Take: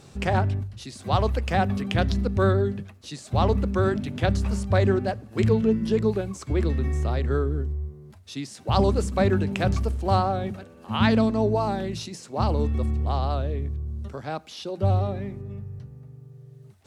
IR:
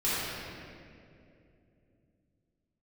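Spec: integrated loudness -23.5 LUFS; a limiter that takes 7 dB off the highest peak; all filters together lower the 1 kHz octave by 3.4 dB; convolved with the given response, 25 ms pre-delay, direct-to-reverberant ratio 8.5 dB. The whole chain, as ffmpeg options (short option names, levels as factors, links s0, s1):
-filter_complex "[0:a]equalizer=f=1000:t=o:g=-5,alimiter=limit=0.168:level=0:latency=1,asplit=2[s0][s1];[1:a]atrim=start_sample=2205,adelay=25[s2];[s1][s2]afir=irnorm=-1:irlink=0,volume=0.1[s3];[s0][s3]amix=inputs=2:normalize=0,volume=1.41"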